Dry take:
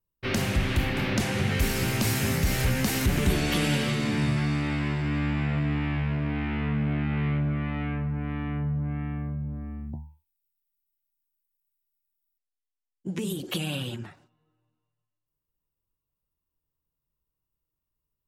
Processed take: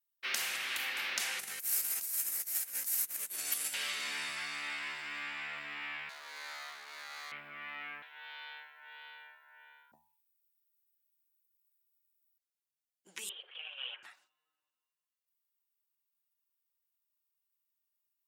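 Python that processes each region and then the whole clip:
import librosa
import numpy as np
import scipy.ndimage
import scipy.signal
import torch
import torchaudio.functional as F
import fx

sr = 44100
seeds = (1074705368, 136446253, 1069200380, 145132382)

y = fx.chain(x, sr, fx.curve_eq(hz=(210.0, 3200.0, 10000.0), db=(0, -10, 9)),
    fx.over_compress(threshold_db=-27.0, ratio=-0.5), at=(1.39, 3.74))
y = fx.chain(y, sr, fx.highpass(hz=630.0, slope=12),
    fx.running_max(window=9), at=(6.09, 7.32))
y = fx.chain(y, sr, fx.highpass(hz=340.0, slope=24),
    fx.ring_mod(carrier_hz=1200.0),
    fx.doubler(ms=32.0, db=-11), at=(8.02, 9.92))
y = fx.chain(y, sr, fx.cheby1_bandpass(low_hz=430.0, high_hz=3200.0, order=5),
    fx.over_compress(threshold_db=-40.0, ratio=-0.5), at=(13.29, 14.03))
y = scipy.signal.sosfilt(scipy.signal.butter(2, 1400.0, 'highpass', fs=sr, output='sos'), y)
y = fx.high_shelf(y, sr, hz=7700.0, db=6.0)
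y = fx.rider(y, sr, range_db=3, speed_s=0.5)
y = F.gain(torch.from_numpy(y), -5.0).numpy()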